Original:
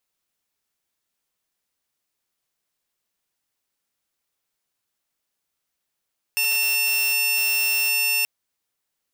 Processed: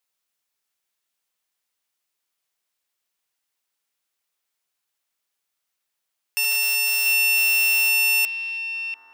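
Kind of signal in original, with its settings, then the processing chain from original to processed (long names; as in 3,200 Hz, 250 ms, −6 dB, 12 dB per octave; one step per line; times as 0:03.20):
tone saw 2,700 Hz −16.5 dBFS 1.88 s
low-shelf EQ 400 Hz −10 dB
on a send: echo through a band-pass that steps 690 ms, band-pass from 2,600 Hz, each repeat −1.4 octaves, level −5 dB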